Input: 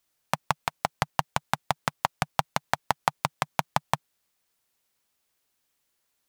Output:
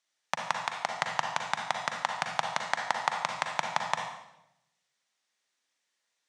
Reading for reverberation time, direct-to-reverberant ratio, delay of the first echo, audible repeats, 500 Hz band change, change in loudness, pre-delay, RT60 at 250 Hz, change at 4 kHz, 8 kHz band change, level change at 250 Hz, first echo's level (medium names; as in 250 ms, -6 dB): 0.85 s, 2.0 dB, no echo, no echo, -3.5 dB, -2.0 dB, 38 ms, 1.0 s, 0.0 dB, -2.5 dB, -10.5 dB, no echo